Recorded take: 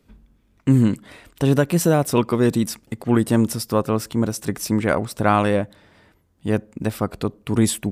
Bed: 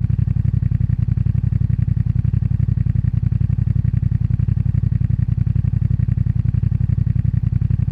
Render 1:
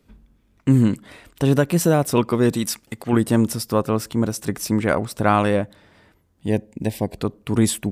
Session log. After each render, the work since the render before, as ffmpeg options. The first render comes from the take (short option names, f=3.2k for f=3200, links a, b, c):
-filter_complex "[0:a]asettb=1/sr,asplit=3[a][b][c];[a]atrim=end=2.554[d];[b]atrim=start=2.55:end=3.13,asetpts=PTS-STARTPTS,afade=t=in:d=0.004:c=qsin,afade=t=out:st=0.576:d=0.004:c=qsin,tiltshelf=f=740:g=-4.5[e];[c]atrim=start=3.126[f];[d][e]acrossfade=d=0.004:c1=hsin:c2=qsin[g];[g][f]acrossfade=d=0.004:c1=qsin:c2=hsin,asettb=1/sr,asplit=3[h][i][j];[h]atrim=end=6.474[k];[i]atrim=start=6.47:end=7.18,asetpts=PTS-STARTPTS,afade=t=in:d=0.004:c=qsin,afade=t=out:st=0.706:d=0.004:c=qsin,asuperstop=centerf=1300:order=4:qfactor=1.6[l];[j]atrim=start=7.176[m];[k][l]acrossfade=d=0.004:c1=hsin:c2=qsin[n];[n][m]acrossfade=d=0.004:c1=qsin:c2=hsin"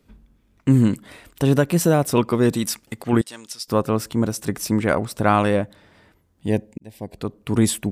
-filter_complex "[0:a]asettb=1/sr,asplit=3[a][b][c];[a]atrim=end=0.834[d];[b]atrim=start=0.83:end=1.43,asetpts=PTS-STARTPTS,afade=t=in:d=0.004:c=qsin,afade=t=out:st=0.596:d=0.004:c=qsin,highshelf=f=10k:g=6.5[e];[c]atrim=start=1.426[f];[d][e]acrossfade=d=0.004:c1=hsin:c2=qsin[g];[g][f]acrossfade=d=0.004:c1=qsin:c2=hsin,asettb=1/sr,asplit=3[h][i][j];[h]atrim=end=3.214[k];[i]atrim=start=3.21:end=3.68,asetpts=PTS-STARTPTS,afade=t=in:d=0.004:c=qsin,afade=t=out:st=0.466:d=0.004:c=qsin,bandpass=f=4.7k:t=q:w=1.1[l];[j]atrim=start=3.676[m];[k][l]acrossfade=d=0.004:c1=hsin:c2=qsin[n];[n][m]acrossfade=d=0.004:c1=qsin:c2=hsin,asplit=2[o][p];[o]atrim=end=6.78,asetpts=PTS-STARTPTS,afade=t=out:st=6.776:d=0.004:c=hsin[q];[p]atrim=start=6.78,asetpts=PTS-STARTPTS,afade=t=in:d=0.73[r];[q][r]concat=n=2:v=0:a=1"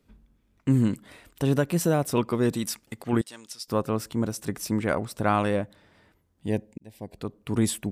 -af "volume=-6dB"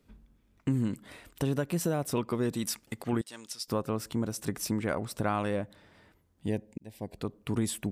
-af "acompressor=threshold=-28dB:ratio=2.5"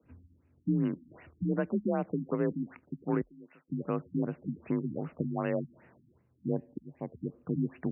-af "afreqshift=38,afftfilt=real='re*lt(b*sr/1024,290*pow(3000/290,0.5+0.5*sin(2*PI*2.6*pts/sr)))':imag='im*lt(b*sr/1024,290*pow(3000/290,0.5+0.5*sin(2*PI*2.6*pts/sr)))':win_size=1024:overlap=0.75"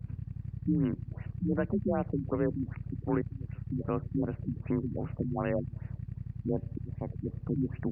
-filter_complex "[1:a]volume=-22.5dB[a];[0:a][a]amix=inputs=2:normalize=0"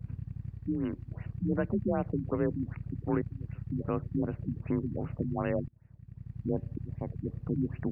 -filter_complex "[0:a]asettb=1/sr,asplit=3[a][b][c];[a]atrim=end=0.504[d];[b]atrim=start=0.5:end=1.09,asetpts=PTS-STARTPTS,afade=t=in:d=0.004:c=qsin,afade=t=out:st=0.586:d=0.004:c=qsin,equalizer=f=160:w=1.5:g=-8.5[e];[c]atrim=start=1.086[f];[d][e]acrossfade=d=0.004:c1=hsin:c2=qsin[g];[g][f]acrossfade=d=0.004:c1=qsin:c2=hsin,asplit=2[h][i];[h]atrim=end=5.68,asetpts=PTS-STARTPTS,afade=t=out:st=5.676:d=0.004:c=hsin:silence=0.0707946[j];[i]atrim=start=5.68,asetpts=PTS-STARTPTS,afade=t=in:d=0.73:c=qua:silence=0.0707946[k];[j][k]concat=n=2:v=0:a=1"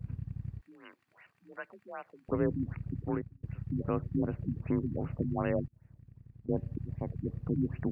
-filter_complex "[0:a]asettb=1/sr,asplit=3[a][b][c];[a]atrim=end=0.614[d];[b]atrim=start=0.61:end=2.29,asetpts=PTS-STARTPTS,afade=t=in:d=0.004:c=qsin,afade=t=out:st=1.676:d=0.004:c=qsin,highpass=1.2k[e];[c]atrim=start=2.286[f];[d][e]acrossfade=d=0.004:c1=hsin:c2=qsin[g];[g][f]acrossfade=d=0.004:c1=qsin:c2=hsin,asettb=1/sr,asplit=3[h][i][j];[h]atrim=end=5.664[k];[i]atrim=start=5.66:end=6.49,asetpts=PTS-STARTPTS,afade=t=in:d=0.004:c=qsin,afade=t=out:st=0.826:d=0.004:c=qsin,acompressor=threshold=-49dB:ratio=6:attack=3.2:release=140:knee=1:detection=peak[l];[j]atrim=start=6.486[m];[k][l]acrossfade=d=0.004:c1=hsin:c2=qsin[n];[n][m]acrossfade=d=0.004:c1=qsin:c2=hsin,asplit=2[o][p];[o]atrim=end=3.43,asetpts=PTS-STARTPTS,afade=t=out:st=2.98:d=0.45[q];[p]atrim=start=3.43,asetpts=PTS-STARTPTS,afade=t=in:d=0.004:c=hsin[r];[q][r]concat=n=2:v=0:a=1"